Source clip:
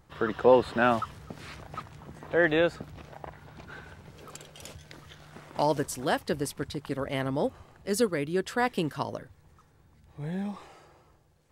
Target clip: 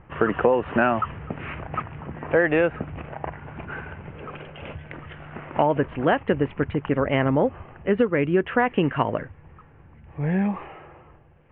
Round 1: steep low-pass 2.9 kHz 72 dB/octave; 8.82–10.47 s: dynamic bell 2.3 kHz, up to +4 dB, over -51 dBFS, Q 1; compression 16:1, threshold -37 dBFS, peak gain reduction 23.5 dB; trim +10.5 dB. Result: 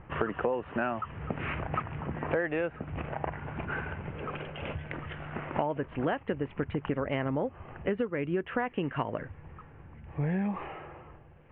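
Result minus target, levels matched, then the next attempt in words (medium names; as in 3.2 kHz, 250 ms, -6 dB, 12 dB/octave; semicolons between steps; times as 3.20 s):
compression: peak gain reduction +11 dB
steep low-pass 2.9 kHz 72 dB/octave; 8.82–10.47 s: dynamic bell 2.3 kHz, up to +4 dB, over -51 dBFS, Q 1; compression 16:1, threshold -25.5 dBFS, peak gain reduction 12.5 dB; trim +10.5 dB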